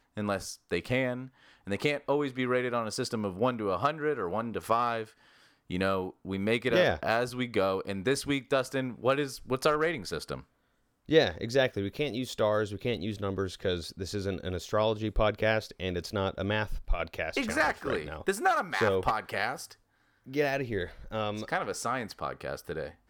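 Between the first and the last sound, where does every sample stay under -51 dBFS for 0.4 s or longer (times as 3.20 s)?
10.43–11.09 s
19.74–20.26 s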